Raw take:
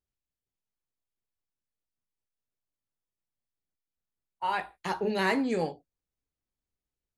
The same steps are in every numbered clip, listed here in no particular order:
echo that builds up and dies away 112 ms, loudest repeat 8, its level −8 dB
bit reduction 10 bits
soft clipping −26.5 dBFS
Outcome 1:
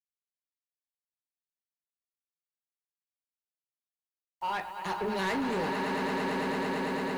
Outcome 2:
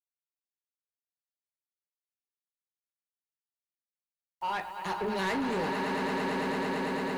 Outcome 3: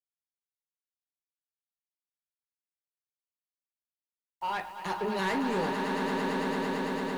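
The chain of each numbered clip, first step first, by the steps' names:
echo that builds up and dies away, then soft clipping, then bit reduction
echo that builds up and dies away, then bit reduction, then soft clipping
soft clipping, then echo that builds up and dies away, then bit reduction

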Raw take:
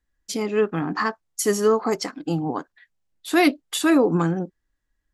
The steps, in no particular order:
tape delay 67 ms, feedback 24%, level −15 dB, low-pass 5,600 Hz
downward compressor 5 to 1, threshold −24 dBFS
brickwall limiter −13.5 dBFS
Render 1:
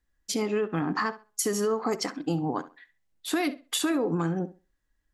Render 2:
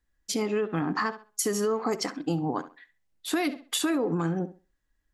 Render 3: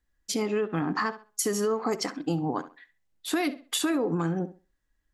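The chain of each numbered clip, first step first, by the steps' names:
brickwall limiter, then downward compressor, then tape delay
tape delay, then brickwall limiter, then downward compressor
brickwall limiter, then tape delay, then downward compressor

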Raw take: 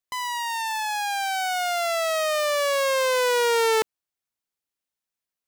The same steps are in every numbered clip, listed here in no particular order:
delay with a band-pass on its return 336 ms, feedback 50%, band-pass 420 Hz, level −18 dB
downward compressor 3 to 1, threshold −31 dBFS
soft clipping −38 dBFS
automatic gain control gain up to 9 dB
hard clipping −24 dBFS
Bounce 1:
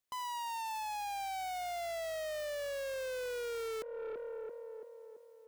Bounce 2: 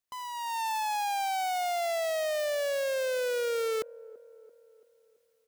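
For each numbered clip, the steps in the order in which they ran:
hard clipping, then automatic gain control, then delay with a band-pass on its return, then downward compressor, then soft clipping
hard clipping, then downward compressor, then soft clipping, then delay with a band-pass on its return, then automatic gain control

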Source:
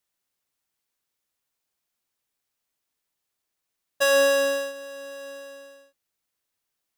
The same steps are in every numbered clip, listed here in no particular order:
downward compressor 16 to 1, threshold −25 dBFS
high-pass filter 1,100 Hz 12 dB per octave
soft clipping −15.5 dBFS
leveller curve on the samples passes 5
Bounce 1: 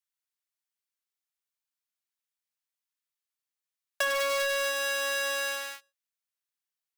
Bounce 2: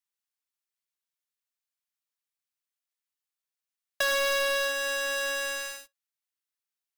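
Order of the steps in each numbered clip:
leveller curve on the samples, then high-pass filter, then soft clipping, then downward compressor
soft clipping, then high-pass filter, then leveller curve on the samples, then downward compressor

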